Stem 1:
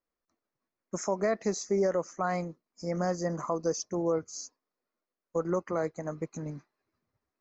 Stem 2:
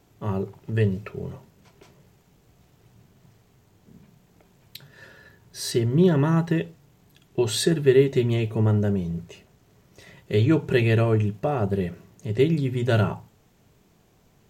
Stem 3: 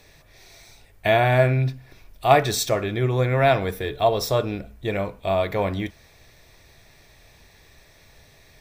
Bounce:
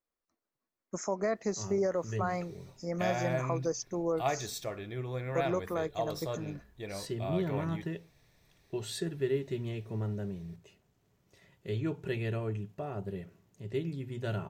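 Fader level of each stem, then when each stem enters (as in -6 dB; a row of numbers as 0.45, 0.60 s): -3.0, -14.0, -15.5 dB; 0.00, 1.35, 1.95 s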